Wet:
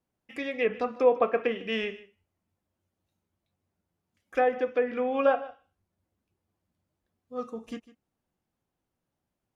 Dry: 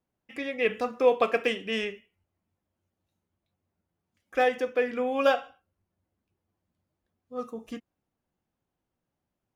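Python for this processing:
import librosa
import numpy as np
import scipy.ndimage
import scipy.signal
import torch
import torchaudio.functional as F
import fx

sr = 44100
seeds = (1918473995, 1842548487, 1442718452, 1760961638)

y = fx.env_lowpass_down(x, sr, base_hz=1500.0, full_db=-21.0)
y = y + 10.0 ** (-18.5 / 20.0) * np.pad(y, (int(152 * sr / 1000.0), 0))[:len(y)]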